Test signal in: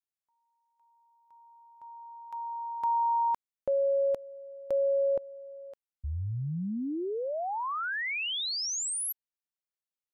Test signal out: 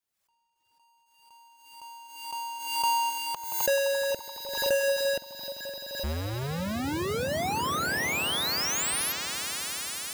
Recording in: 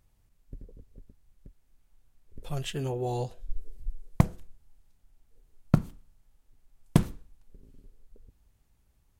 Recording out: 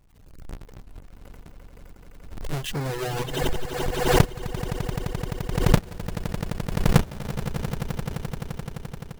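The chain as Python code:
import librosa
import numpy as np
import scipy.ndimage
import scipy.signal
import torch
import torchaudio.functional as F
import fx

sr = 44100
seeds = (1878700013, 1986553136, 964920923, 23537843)

y = fx.halfwave_hold(x, sr)
y = fx.echo_swell(y, sr, ms=86, loudest=8, wet_db=-12.5)
y = fx.dereverb_blind(y, sr, rt60_s=1.2)
y = fx.pre_swell(y, sr, db_per_s=58.0)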